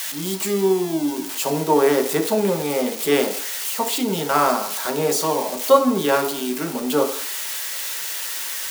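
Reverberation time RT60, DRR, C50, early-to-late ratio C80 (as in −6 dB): 0.55 s, 2.0 dB, 10.0 dB, 13.5 dB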